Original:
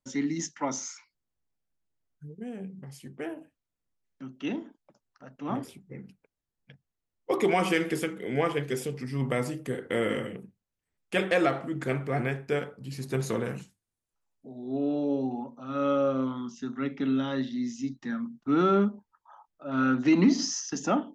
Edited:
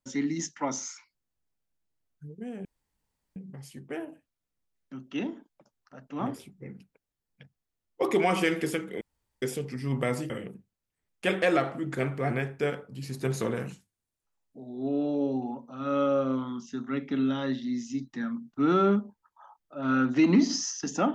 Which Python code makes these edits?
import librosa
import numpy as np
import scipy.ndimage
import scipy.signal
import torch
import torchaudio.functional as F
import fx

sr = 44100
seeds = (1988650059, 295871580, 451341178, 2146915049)

y = fx.edit(x, sr, fx.insert_room_tone(at_s=2.65, length_s=0.71),
    fx.room_tone_fill(start_s=8.3, length_s=0.41),
    fx.cut(start_s=9.59, length_s=0.6), tone=tone)